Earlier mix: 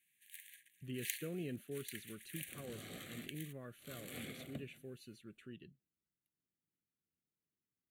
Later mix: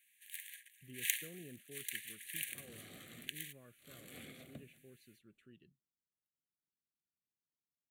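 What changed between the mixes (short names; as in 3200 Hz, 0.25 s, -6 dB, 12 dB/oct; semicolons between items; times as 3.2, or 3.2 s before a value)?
speech -9.5 dB; first sound +6.5 dB; second sound -4.5 dB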